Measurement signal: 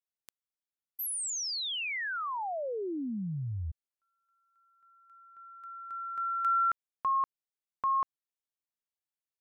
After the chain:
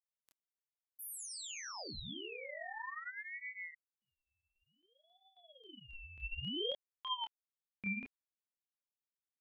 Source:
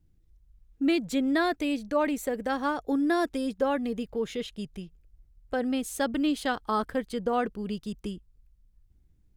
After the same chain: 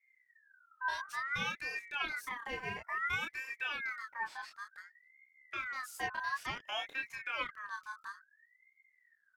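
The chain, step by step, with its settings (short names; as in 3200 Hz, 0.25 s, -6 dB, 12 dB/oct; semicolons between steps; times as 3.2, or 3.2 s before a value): chorus voices 4, 0.59 Hz, delay 28 ms, depth 4.8 ms; ring modulator with a swept carrier 1700 Hz, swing 25%, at 0.57 Hz; gain -5.5 dB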